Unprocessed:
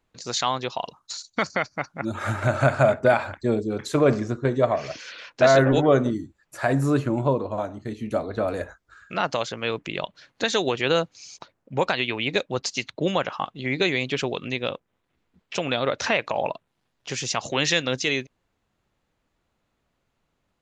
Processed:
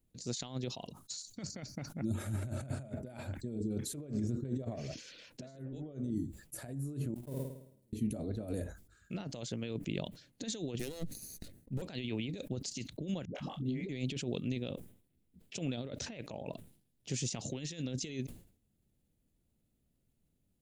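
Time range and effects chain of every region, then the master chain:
7.14–7.93 s: jump at every zero crossing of -23.5 dBFS + gate -17 dBFS, range -46 dB + flutter echo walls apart 9.2 m, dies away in 0.69 s
10.79–11.82 s: comb filter that takes the minimum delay 0.48 ms + band-stop 2.3 kHz
13.25–13.89 s: band-stop 1.4 kHz, Q 21 + doubling 28 ms -7.5 dB + phase dispersion highs, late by 101 ms, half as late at 390 Hz
whole clip: compressor with a negative ratio -29 dBFS, ratio -1; FFT filter 230 Hz 0 dB, 650 Hz -13 dB, 1.1 kHz -23 dB, 3.1 kHz -12 dB, 6.2 kHz -8 dB, 9.8 kHz +5 dB; decay stretcher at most 110 dB/s; trim -5.5 dB

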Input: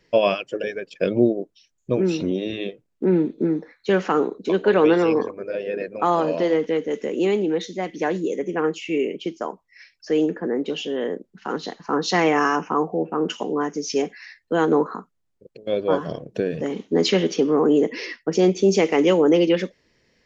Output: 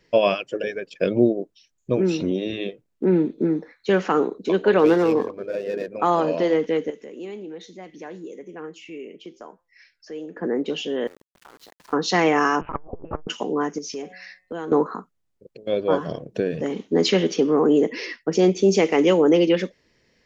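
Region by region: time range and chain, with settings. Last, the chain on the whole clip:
4.79–5.91 s: median filter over 15 samples + treble shelf 5.6 kHz -4.5 dB
6.90–10.37 s: compression 1.5:1, threshold -44 dBFS + flange 1.1 Hz, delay 5.6 ms, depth 3.6 ms, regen +87%
11.07–11.93 s: high-pass 530 Hz 6 dB/octave + compression, threshold -44 dBFS + small samples zeroed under -45.5 dBFS
12.61–13.27 s: LPC vocoder at 8 kHz pitch kept + transformer saturation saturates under 310 Hz
13.78–14.72 s: de-hum 183.4 Hz, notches 14 + compression 3:1, threshold -31 dBFS
whole clip: none

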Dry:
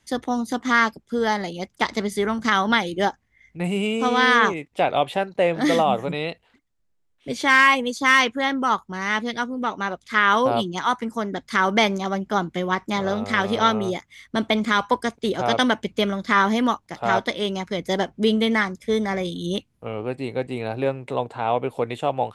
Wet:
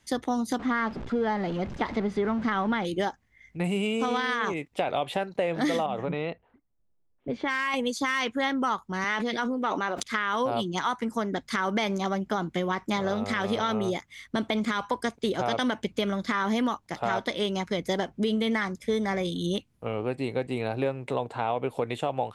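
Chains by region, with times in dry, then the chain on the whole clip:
0.59–2.85 s: jump at every zero crossing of -29 dBFS + tape spacing loss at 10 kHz 31 dB
5.86–7.74 s: level-controlled noise filter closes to 830 Hz, open at -12 dBFS + compression 4:1, threshold -23 dBFS
9.04–10.03 s: high-pass 260 Hz + treble shelf 7.3 kHz -7.5 dB + decay stretcher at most 38 dB/s
whole clip: peak limiter -12.5 dBFS; compression 2.5:1, threshold -25 dBFS

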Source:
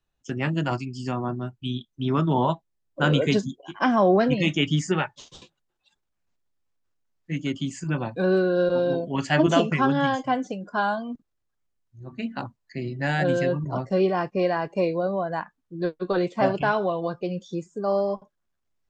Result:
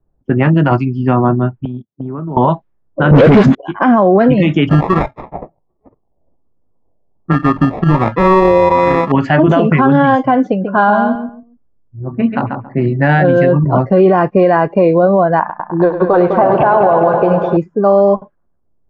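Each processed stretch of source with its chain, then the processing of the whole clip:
1.65–2.37 s: gate -37 dBFS, range -16 dB + high-pass 94 Hz 24 dB/octave + compression 12:1, threshold -36 dBFS
3.11–3.55 s: dead-time distortion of 0.2 ms + phase dispersion highs, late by 48 ms, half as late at 570 Hz + waveshaping leveller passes 3
4.69–9.12 s: transient shaper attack +6 dB, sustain -3 dB + sample-rate reducer 1.5 kHz + sweeping bell 1.3 Hz 630–1500 Hz +10 dB
10.50–12.86 s: band-stop 6.9 kHz, Q 6.5 + feedback delay 138 ms, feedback 23%, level -7 dB
15.39–17.57 s: peaking EQ 800 Hz +12 dB 1.5 oct + compression 2:1, threshold -25 dBFS + multi-head delay 102 ms, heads first and second, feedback 69%, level -12.5 dB
whole clip: low-pass 1.7 kHz 12 dB/octave; level-controlled noise filter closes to 570 Hz, open at -22.5 dBFS; loudness maximiser +18 dB; trim -1 dB

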